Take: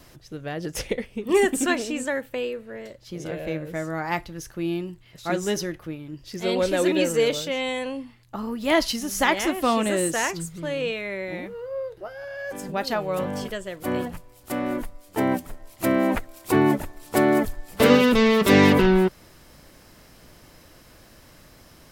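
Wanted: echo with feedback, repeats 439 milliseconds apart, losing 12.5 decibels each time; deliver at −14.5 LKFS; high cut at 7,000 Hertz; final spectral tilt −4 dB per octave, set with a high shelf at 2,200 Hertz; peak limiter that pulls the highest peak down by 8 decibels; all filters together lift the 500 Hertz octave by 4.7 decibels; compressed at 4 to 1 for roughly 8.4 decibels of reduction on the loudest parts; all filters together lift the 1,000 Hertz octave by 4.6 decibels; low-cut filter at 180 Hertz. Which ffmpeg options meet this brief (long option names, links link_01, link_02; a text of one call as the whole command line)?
ffmpeg -i in.wav -af "highpass=180,lowpass=7000,equalizer=frequency=500:width_type=o:gain=5,equalizer=frequency=1000:width_type=o:gain=3.5,highshelf=frequency=2200:gain=3.5,acompressor=threshold=-18dB:ratio=4,alimiter=limit=-15dB:level=0:latency=1,aecho=1:1:439|878|1317:0.237|0.0569|0.0137,volume=12dB" out.wav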